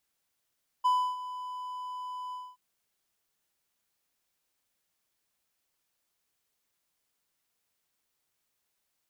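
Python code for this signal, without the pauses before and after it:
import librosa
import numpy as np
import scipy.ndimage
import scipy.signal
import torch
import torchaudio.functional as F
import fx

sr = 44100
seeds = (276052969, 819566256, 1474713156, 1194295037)

y = fx.adsr_tone(sr, wave='triangle', hz=1000.0, attack_ms=17.0, decay_ms=302.0, sustain_db=-15.0, held_s=1.49, release_ms=235.0, level_db=-19.0)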